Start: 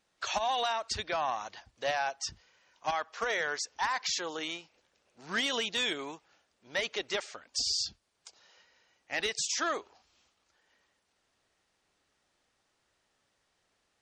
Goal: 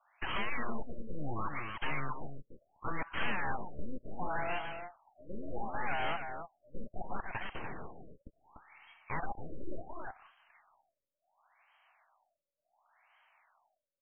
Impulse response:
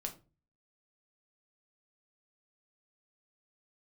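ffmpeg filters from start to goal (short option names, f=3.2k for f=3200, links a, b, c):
-filter_complex "[0:a]highpass=f=310:w=0.5412,highpass=f=310:w=1.3066,acrossover=split=910[a][b];[b]acompressor=threshold=-44dB:ratio=6[c];[a][c]amix=inputs=2:normalize=0,afreqshift=360,aeval=exprs='0.075*(cos(1*acos(clip(val(0)/0.075,-1,1)))-cos(1*PI/2))+0.0168*(cos(2*acos(clip(val(0)/0.075,-1,1)))-cos(2*PI/2))+0.00531*(cos(3*acos(clip(val(0)/0.075,-1,1)))-cos(3*PI/2))+0.0266*(cos(4*acos(clip(val(0)/0.075,-1,1)))-cos(4*PI/2))+0.0106*(cos(8*acos(clip(val(0)/0.075,-1,1)))-cos(8*PI/2))':c=same,asoftclip=type=hard:threshold=-39.5dB,asplit=2[d][e];[e]aecho=0:1:293:0.447[f];[d][f]amix=inputs=2:normalize=0,afftfilt=real='re*lt(b*sr/1024,570*pow(3300/570,0.5+0.5*sin(2*PI*0.7*pts/sr)))':imag='im*lt(b*sr/1024,570*pow(3300/570,0.5+0.5*sin(2*PI*0.7*pts/sr)))':win_size=1024:overlap=0.75,volume=12dB"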